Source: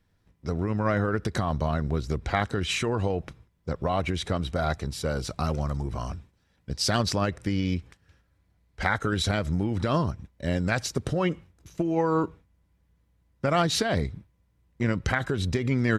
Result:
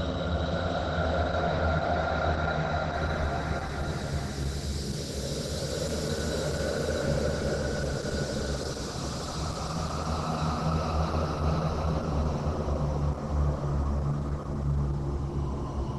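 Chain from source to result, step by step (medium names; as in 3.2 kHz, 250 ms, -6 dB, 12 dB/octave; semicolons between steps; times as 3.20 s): Paulstretch 11×, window 0.50 s, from 4.46 s; Opus 12 kbps 48 kHz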